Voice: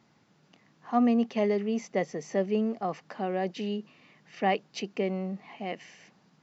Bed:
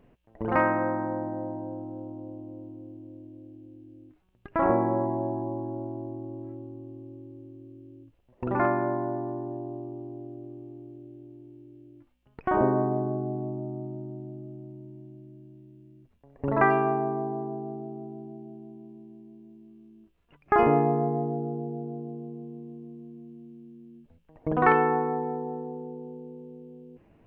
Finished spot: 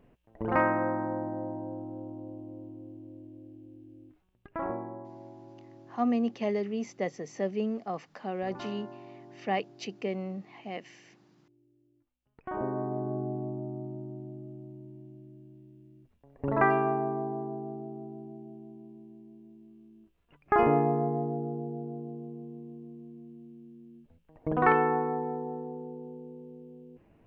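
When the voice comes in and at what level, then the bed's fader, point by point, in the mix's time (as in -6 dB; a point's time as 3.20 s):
5.05 s, -3.5 dB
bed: 4.18 s -2 dB
5.06 s -18 dB
12.02 s -18 dB
13.20 s -2.5 dB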